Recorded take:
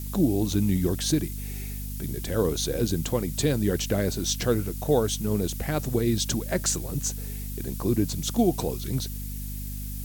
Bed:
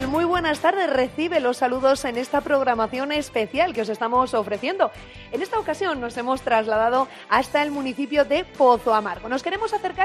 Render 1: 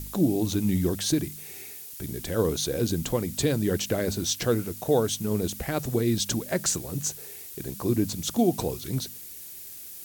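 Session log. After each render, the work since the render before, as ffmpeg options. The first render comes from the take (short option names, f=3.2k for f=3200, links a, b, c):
-af "bandreject=f=50:t=h:w=4,bandreject=f=100:t=h:w=4,bandreject=f=150:t=h:w=4,bandreject=f=200:t=h:w=4,bandreject=f=250:t=h:w=4"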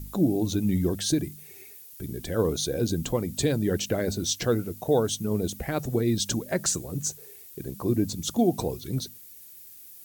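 -af "afftdn=nr=9:nf=-42"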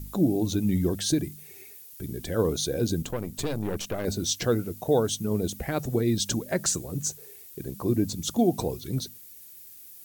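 -filter_complex "[0:a]asettb=1/sr,asplit=3[a][b][c];[a]atrim=end=3.024[d];[b]atrim=start=3.02:end=4.05,asetpts=PTS-STARTPTS,afade=t=in:d=0.004:c=qsin,afade=t=out:st=1.026:d=0.004:c=qsin,aeval=exprs='(tanh(17.8*val(0)+0.75)-tanh(0.75))/17.8':c=same[e];[c]atrim=start=4.046[f];[d][e]acrossfade=d=0.004:c1=hsin:c2=qsin[g];[g][f]acrossfade=d=0.004:c1=qsin:c2=hsin"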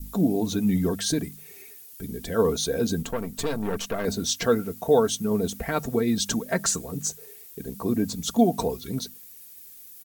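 -af "aecho=1:1:4.4:0.53,adynamicequalizer=threshold=0.00891:dfrequency=1200:dqfactor=0.96:tfrequency=1200:tqfactor=0.96:attack=5:release=100:ratio=0.375:range=3:mode=boostabove:tftype=bell"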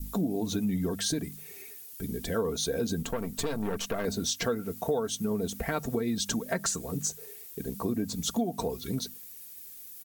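-af "acompressor=threshold=-27dB:ratio=4"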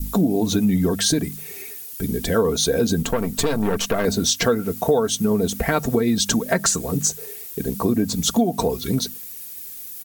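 -af "volume=10.5dB"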